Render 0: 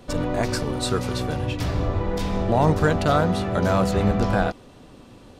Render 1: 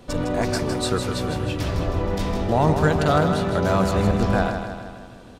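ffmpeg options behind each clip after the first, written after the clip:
ffmpeg -i in.wav -af "aecho=1:1:158|316|474|632|790|948|1106:0.422|0.236|0.132|0.0741|0.0415|0.0232|0.013" out.wav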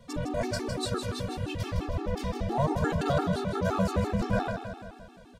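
ffmpeg -i in.wav -af "afftfilt=real='re*gt(sin(2*PI*5.8*pts/sr)*(1-2*mod(floor(b*sr/1024/230),2)),0)':imag='im*gt(sin(2*PI*5.8*pts/sr)*(1-2*mod(floor(b*sr/1024/230),2)),0)':win_size=1024:overlap=0.75,volume=-4.5dB" out.wav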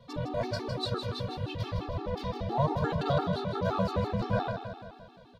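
ffmpeg -i in.wav -af "equalizer=frequency=125:width_type=o:width=1:gain=10,equalizer=frequency=500:width_type=o:width=1:gain=6,equalizer=frequency=1000:width_type=o:width=1:gain=8,equalizer=frequency=4000:width_type=o:width=1:gain=12,equalizer=frequency=8000:width_type=o:width=1:gain=-10,volume=-8.5dB" out.wav

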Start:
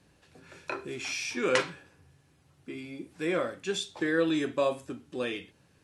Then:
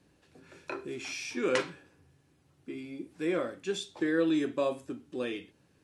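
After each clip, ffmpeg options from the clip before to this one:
ffmpeg -i in.wav -af "equalizer=frequency=310:width_type=o:width=1.2:gain=5.5,volume=-4.5dB" out.wav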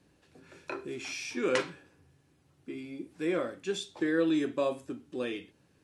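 ffmpeg -i in.wav -af anull out.wav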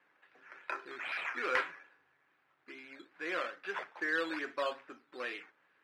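ffmpeg -i in.wav -filter_complex "[0:a]acrusher=samples=9:mix=1:aa=0.000001:lfo=1:lforange=5.4:lforate=2.4,bandpass=frequency=1700:width_type=q:width=1.4:csg=0,asplit=2[link_01][link_02];[link_02]highpass=frequency=720:poles=1,volume=10dB,asoftclip=type=tanh:threshold=-18.5dB[link_03];[link_01][link_03]amix=inputs=2:normalize=0,lowpass=frequency=1700:poles=1,volume=-6dB,volume=3.5dB" out.wav

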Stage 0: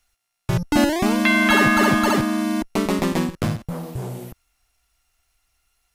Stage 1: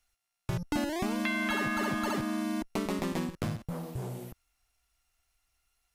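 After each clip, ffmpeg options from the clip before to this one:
ffmpeg -i in.wav -af "acompressor=threshold=-21dB:ratio=4,volume=-7.5dB" out.wav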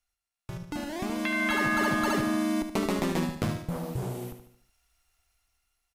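ffmpeg -i in.wav -af "aecho=1:1:74|148|222|296|370:0.355|0.167|0.0784|0.0368|0.0173,dynaudnorm=framelen=270:gausssize=9:maxgain=11.5dB,volume=-7dB" out.wav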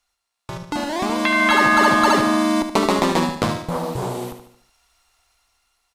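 ffmpeg -i in.wav -af "equalizer=frequency=250:width_type=o:width=1:gain=4,equalizer=frequency=500:width_type=o:width=1:gain=6,equalizer=frequency=1000:width_type=o:width=1:gain=12,equalizer=frequency=2000:width_type=o:width=1:gain=3,equalizer=frequency=4000:width_type=o:width=1:gain=9,equalizer=frequency=8000:width_type=o:width=1:gain=6,volume=2.5dB" out.wav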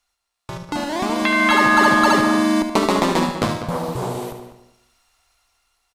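ffmpeg -i in.wav -filter_complex "[0:a]asplit=2[link_01][link_02];[link_02]adelay=198,lowpass=frequency=2300:poles=1,volume=-10dB,asplit=2[link_03][link_04];[link_04]adelay=198,lowpass=frequency=2300:poles=1,volume=0.19,asplit=2[link_05][link_06];[link_06]adelay=198,lowpass=frequency=2300:poles=1,volume=0.19[link_07];[link_01][link_03][link_05][link_07]amix=inputs=4:normalize=0" out.wav

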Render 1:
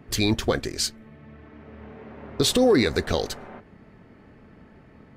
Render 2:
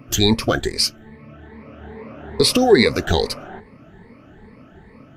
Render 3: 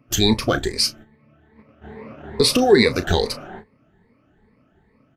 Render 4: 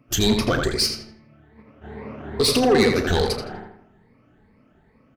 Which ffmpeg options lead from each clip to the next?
ffmpeg -i in.wav -af "afftfilt=real='re*pow(10,14/40*sin(2*PI*(0.93*log(max(b,1)*sr/1024/100)/log(2)-(2.4)*(pts-256)/sr)))':imag='im*pow(10,14/40*sin(2*PI*(0.93*log(max(b,1)*sr/1024/100)/log(2)-(2.4)*(pts-256)/sr)))':win_size=1024:overlap=0.75,volume=3.5dB" out.wav
ffmpeg -i in.wav -filter_complex "[0:a]agate=range=-13dB:threshold=-37dB:ratio=16:detection=peak,asplit=2[link_01][link_02];[link_02]adelay=33,volume=-13dB[link_03];[link_01][link_03]amix=inputs=2:normalize=0,volume=-1dB" out.wav
ffmpeg -i in.wav -filter_complex "[0:a]asoftclip=type=tanh:threshold=-13dB,asplit=2[link_01][link_02];[link_02]adelay=82,lowpass=frequency=3300:poles=1,volume=-4dB,asplit=2[link_03][link_04];[link_04]adelay=82,lowpass=frequency=3300:poles=1,volume=0.44,asplit=2[link_05][link_06];[link_06]adelay=82,lowpass=frequency=3300:poles=1,volume=0.44,asplit=2[link_07][link_08];[link_08]adelay=82,lowpass=frequency=3300:poles=1,volume=0.44,asplit=2[link_09][link_10];[link_10]adelay=82,lowpass=frequency=3300:poles=1,volume=0.44,asplit=2[link_11][link_12];[link_12]adelay=82,lowpass=frequency=3300:poles=1,volume=0.44[link_13];[link_03][link_05][link_07][link_09][link_11][link_13]amix=inputs=6:normalize=0[link_14];[link_01][link_14]amix=inputs=2:normalize=0" out.wav

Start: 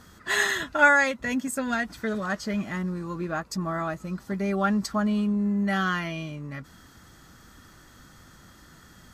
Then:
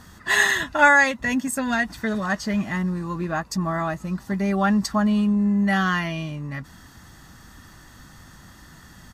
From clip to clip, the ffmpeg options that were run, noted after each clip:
ffmpeg -i in.wav -af "aecho=1:1:1.1:0.34,volume=4dB" out.wav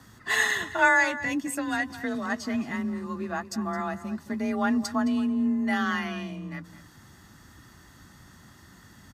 ffmpeg -i in.wav -filter_complex "[0:a]afreqshift=31,asplit=2[link_01][link_02];[link_02]adelay=215.7,volume=-14dB,highshelf=frequency=4000:gain=-4.85[link_03];[link_01][link_03]amix=inputs=2:normalize=0,volume=-5.5dB" out.wav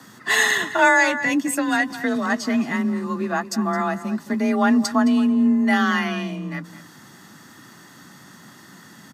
ffmpeg -i in.wav -filter_complex "[0:a]highpass=frequency=150:width=0.5412,highpass=frequency=150:width=1.3066,acrossover=split=280|980|2100[link_01][link_02][link_03][link_04];[link_03]alimiter=level_in=2dB:limit=-24dB:level=0:latency=1,volume=-2dB[link_05];[link_01][link_02][link_05][link_04]amix=inputs=4:normalize=0,volume=8dB" out.wav

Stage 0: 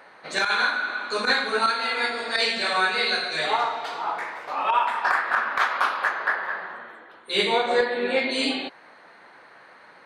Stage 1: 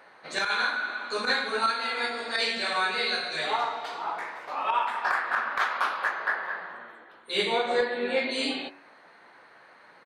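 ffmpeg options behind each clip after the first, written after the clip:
ffmpeg -i in.wav -filter_complex "[0:a]asplit=2[link_01][link_02];[link_02]adelay=17,volume=-13.5dB[link_03];[link_01][link_03]amix=inputs=2:normalize=0,bandreject=frequency=94.35:width_type=h:width=4,bandreject=frequency=188.7:width_type=h:width=4,bandreject=frequency=283.05:width_type=h:width=4,bandreject=frequency=377.4:width_type=h:width=4,bandreject=frequency=471.75:width_type=h:width=4,bandreject=frequency=566.1:width_type=h:width=4,bandreject=frequency=660.45:width_type=h:width=4,bandreject=frequency=754.8:width_type=h:width=4,bandreject=frequency=849.15:width_type=h:width=4,bandreject=frequency=943.5:width_type=h:width=4,bandreject=frequency=1037.85:width_type=h:width=4,bandreject=frequency=1132.2:width_type=h:width=4,bandreject=frequency=1226.55:width_type=h:width=4,bandreject=frequency=1320.9:width_type=h:width=4,bandreject=frequency=1415.25:width_type=h:width=4,bandreject=frequency=1509.6:width_type=h:width=4,bandreject=frequency=1603.95:width_type=h:width=4,bandreject=frequency=1698.3:width_type=h:width=4,bandreject=frequency=1792.65:width_type=h:width=4,bandreject=frequency=1887:width_type=h:width=4,bandreject=frequency=1981.35:width_type=h:width=4,bandreject=frequency=2075.7:width_type=h:width=4,bandreject=frequency=2170.05:width_type=h:width=4,bandreject=frequency=2264.4:width_type=h:width=4,bandreject=frequency=2358.75:width_type=h:width=4,bandreject=frequency=2453.1:width_type=h:width=4,bandreject=frequency=2547.45:width_type=h:width=4,bandreject=frequency=2641.8:width_type=h:width=4,bandreject=frequency=2736.15:width_type=h:width=4,volume=-4dB" out.wav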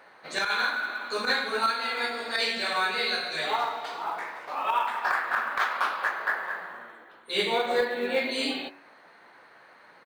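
ffmpeg -i in.wav -af "acrusher=bits=8:mode=log:mix=0:aa=0.000001" out.wav

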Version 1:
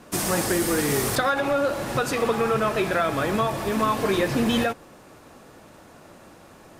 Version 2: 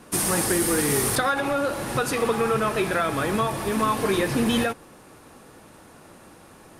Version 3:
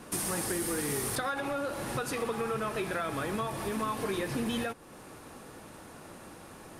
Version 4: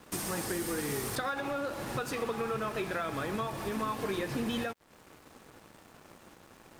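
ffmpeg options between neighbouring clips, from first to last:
ffmpeg -i in.wav -af "superequalizer=8b=0.708:16b=2" out.wav
ffmpeg -i in.wav -af "acompressor=threshold=-38dB:ratio=2" out.wav
ffmpeg -i in.wav -af "aeval=exprs='sgn(val(0))*max(abs(val(0))-0.00316,0)':channel_layout=same,equalizer=frequency=10000:width_type=o:width=0.29:gain=-9" out.wav

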